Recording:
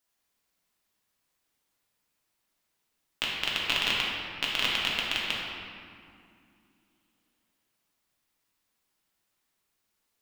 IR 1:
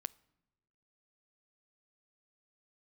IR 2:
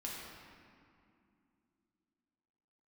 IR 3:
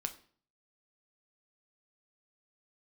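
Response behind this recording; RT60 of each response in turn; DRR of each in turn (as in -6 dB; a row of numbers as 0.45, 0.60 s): 2; not exponential, 2.5 s, 0.50 s; 20.0, -5.0, 6.0 dB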